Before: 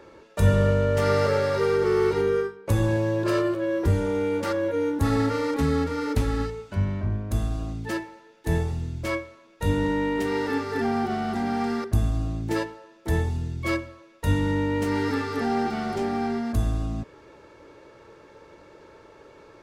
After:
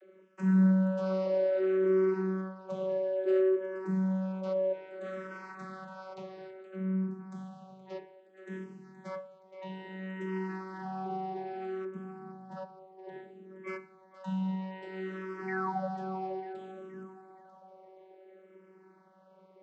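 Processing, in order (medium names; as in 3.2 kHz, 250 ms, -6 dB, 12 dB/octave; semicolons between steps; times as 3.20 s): 11.91–13.67 s: treble shelf 2.6 kHz -11.5 dB; 15.47–15.89 s: painted sound fall 450–2100 Hz -25 dBFS; vocoder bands 32, saw 189 Hz; two-band feedback delay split 300 Hz, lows 94 ms, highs 471 ms, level -12 dB; barber-pole phaser -0.6 Hz; trim -6 dB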